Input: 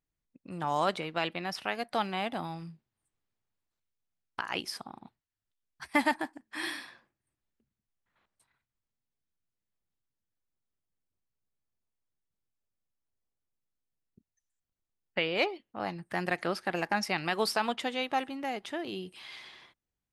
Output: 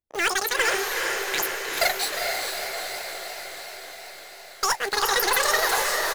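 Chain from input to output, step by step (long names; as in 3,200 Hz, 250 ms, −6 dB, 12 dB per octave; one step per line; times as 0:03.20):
high-shelf EQ 7,800 Hz +10.5 dB
mains-hum notches 60/120/180/240/300/360 Hz
leveller curve on the samples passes 3
tempo change 1.4×
in parallel at −8.5 dB: wrap-around overflow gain 26 dB
on the sum: double-tracking delay 35 ms −14 dB
on a send: feedback delay with all-pass diffusion 1,023 ms, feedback 67%, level −3.5 dB
on the sum: wrong playback speed 33 rpm record played at 78 rpm
feedback echo with a swinging delay time 312 ms, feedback 69%, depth 194 cents, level −13.5 dB
level −1 dB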